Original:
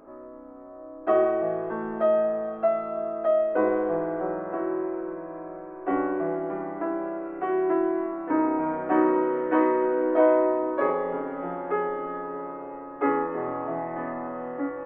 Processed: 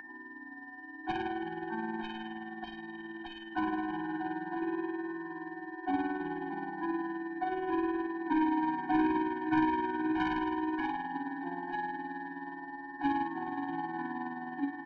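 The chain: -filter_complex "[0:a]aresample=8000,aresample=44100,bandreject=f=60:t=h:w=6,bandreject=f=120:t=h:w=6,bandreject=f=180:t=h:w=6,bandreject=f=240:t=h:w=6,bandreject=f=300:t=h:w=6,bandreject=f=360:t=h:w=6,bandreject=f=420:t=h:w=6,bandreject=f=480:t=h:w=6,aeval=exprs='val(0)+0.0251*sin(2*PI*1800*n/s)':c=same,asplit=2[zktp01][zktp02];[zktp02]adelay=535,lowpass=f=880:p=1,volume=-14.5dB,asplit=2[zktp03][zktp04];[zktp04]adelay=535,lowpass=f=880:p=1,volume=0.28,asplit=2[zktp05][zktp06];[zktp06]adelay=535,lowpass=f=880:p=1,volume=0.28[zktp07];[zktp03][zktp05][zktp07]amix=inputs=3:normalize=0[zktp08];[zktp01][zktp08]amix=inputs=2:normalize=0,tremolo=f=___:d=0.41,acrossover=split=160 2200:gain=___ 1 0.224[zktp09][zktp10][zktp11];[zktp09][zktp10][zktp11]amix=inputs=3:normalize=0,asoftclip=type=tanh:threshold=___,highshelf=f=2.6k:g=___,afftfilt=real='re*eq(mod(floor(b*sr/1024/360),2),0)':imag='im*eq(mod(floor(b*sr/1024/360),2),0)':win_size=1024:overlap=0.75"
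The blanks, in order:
19, 0.0708, -19.5dB, 5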